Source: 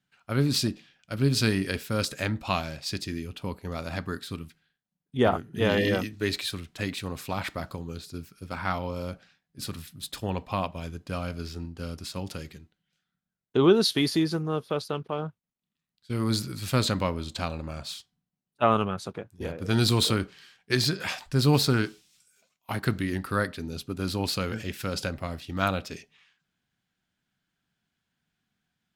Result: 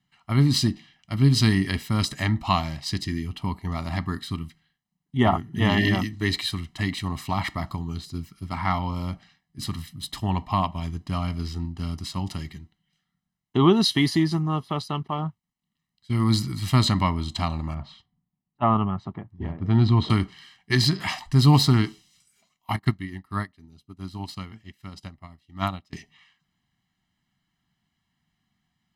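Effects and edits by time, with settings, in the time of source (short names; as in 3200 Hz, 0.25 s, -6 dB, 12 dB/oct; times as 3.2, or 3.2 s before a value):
17.74–20.1 tape spacing loss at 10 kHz 36 dB
22.76–25.93 upward expander 2.5:1, over -39 dBFS
whole clip: high shelf 7900 Hz -8.5 dB; comb 1 ms, depth 94%; gain +2 dB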